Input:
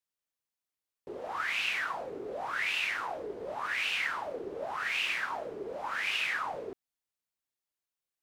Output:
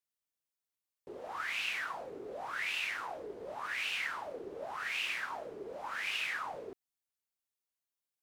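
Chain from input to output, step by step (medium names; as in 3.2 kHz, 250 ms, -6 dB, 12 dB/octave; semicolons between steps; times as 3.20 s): treble shelf 5.8 kHz +4.5 dB; trim -5 dB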